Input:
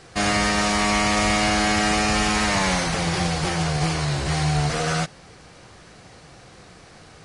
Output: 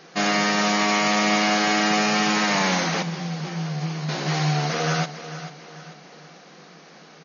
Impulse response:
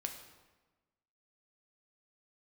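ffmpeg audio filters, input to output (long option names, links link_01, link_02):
-filter_complex "[0:a]aecho=1:1:441|882|1323|1764:0.237|0.0972|0.0399|0.0163,asettb=1/sr,asplit=3[link_01][link_02][link_03];[link_01]atrim=end=3.024[link_04];[link_02]atrim=start=3.02:end=4.09,asetpts=PTS-STARTPTS,afade=type=in:duration=0.004:curve=qsin,afade=type=out:start_time=1.066:duration=0.004:curve=qsin,acrossover=split=180[link_05][link_06];[link_06]acompressor=threshold=-50dB:ratio=1.5[link_07];[link_05][link_07]amix=inputs=2:normalize=0[link_08];[link_03]atrim=start=4.086[link_09];[link_04][link_08]acrossfade=duration=0.004:curve1=hsin:curve2=qsin[link_10];[link_10][link_09]acrossfade=duration=0.004:curve1=qsin:curve2=hsin,afftfilt=real='re*between(b*sr/4096,140,6800)':imag='im*between(b*sr/4096,140,6800)':win_size=4096:overlap=0.75"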